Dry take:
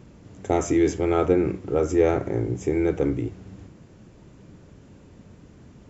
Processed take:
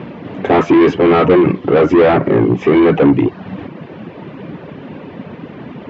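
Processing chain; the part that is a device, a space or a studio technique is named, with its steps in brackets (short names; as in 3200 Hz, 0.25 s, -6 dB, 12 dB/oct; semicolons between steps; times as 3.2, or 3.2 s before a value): reverb removal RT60 0.62 s; overdrive pedal into a guitar cabinet (overdrive pedal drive 29 dB, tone 1900 Hz, clips at -7.5 dBFS; speaker cabinet 90–3500 Hz, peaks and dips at 160 Hz +6 dB, 250 Hz +4 dB, 1400 Hz -4 dB); gain +5.5 dB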